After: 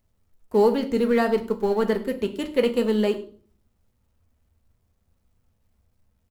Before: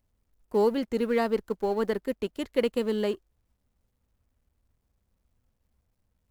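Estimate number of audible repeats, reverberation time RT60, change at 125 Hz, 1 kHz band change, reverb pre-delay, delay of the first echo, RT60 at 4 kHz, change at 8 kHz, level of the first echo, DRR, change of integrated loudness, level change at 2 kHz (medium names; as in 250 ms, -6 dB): 1, 0.50 s, no reading, +4.5 dB, 4 ms, 102 ms, 0.40 s, no reading, -21.5 dB, 5.0 dB, +5.0 dB, +5.0 dB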